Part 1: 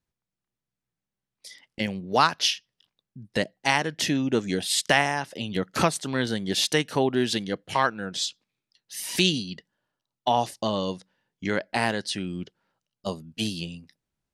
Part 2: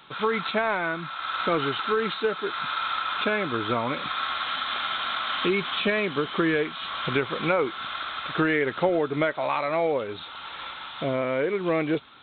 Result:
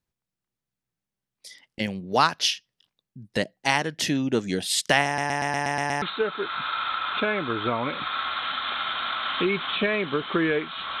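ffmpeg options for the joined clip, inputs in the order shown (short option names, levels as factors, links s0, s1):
-filter_complex "[0:a]apad=whole_dur=11,atrim=end=11,asplit=8[s0][s1][s2][s3][s4][s5][s6][s7];[s0]atrim=end=5.182[s8];[s1]atrim=start=5.058:end=5.182[s9];[s2]atrim=start=5.058:end=5.182[s10];[s3]atrim=start=5.058:end=5.182[s11];[s4]atrim=start=5.058:end=5.182[s12];[s5]atrim=start=5.058:end=5.182[s13];[s6]atrim=start=5.058:end=5.182[s14];[s7]atrim=start=5.058:end=5.182[s15];[1:a]atrim=start=2.058:end=7.04[s16];[s8][s9]acrossfade=d=0.004:c1=hsin:c2=hsin[s17];[s17][s10]acrossfade=d=0.004:c1=hsin:c2=hsin[s18];[s18][s11]acrossfade=d=0.004:c1=hsin:c2=hsin[s19];[s19][s12]acrossfade=d=0.004:c1=hsin:c2=hsin[s20];[s20][s13]acrossfade=d=0.004:c1=hsin:c2=hsin[s21];[s21][s14]acrossfade=d=0.004:c1=hsin:c2=hsin[s22];[s22][s15]acrossfade=d=0.004:c1=hsin:c2=hsin[s23];[s23][s16]acrossfade=d=0.004:c1=hsin:c2=hsin"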